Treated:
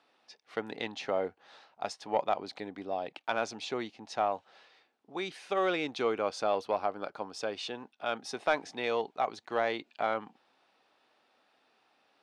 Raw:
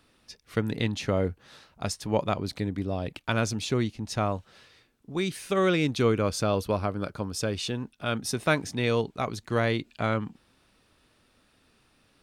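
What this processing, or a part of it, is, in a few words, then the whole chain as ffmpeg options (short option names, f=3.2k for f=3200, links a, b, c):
intercom: -af "highpass=390,lowpass=4.7k,equalizer=f=780:t=o:w=0.5:g=9.5,asoftclip=type=tanh:threshold=-11dB,volume=-4dB"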